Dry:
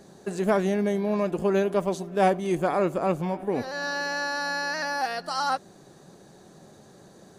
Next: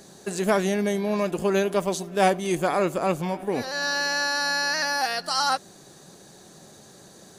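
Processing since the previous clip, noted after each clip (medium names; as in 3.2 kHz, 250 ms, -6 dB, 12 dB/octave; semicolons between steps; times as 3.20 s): treble shelf 2.2 kHz +10.5 dB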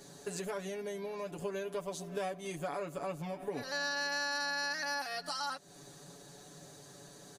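compression 6:1, threshold -31 dBFS, peak gain reduction 15 dB; comb 7 ms, depth 89%; trim -7 dB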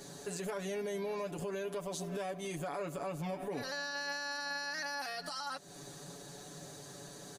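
peak limiter -34.5 dBFS, peak gain reduction 10.5 dB; trim +4 dB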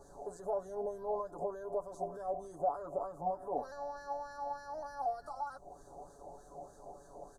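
wah-wah 3.3 Hz 720–1700 Hz, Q 4.5; added noise brown -77 dBFS; Chebyshev band-stop 610–8300 Hz, order 2; trim +16.5 dB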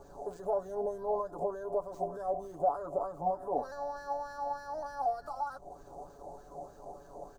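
median filter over 5 samples; trim +4 dB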